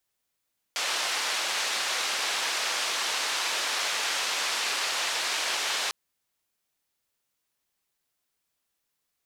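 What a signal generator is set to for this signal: noise band 620–5100 Hz, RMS -29 dBFS 5.15 s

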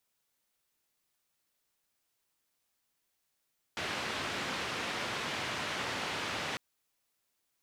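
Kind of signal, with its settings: noise band 90–2900 Hz, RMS -36.5 dBFS 2.80 s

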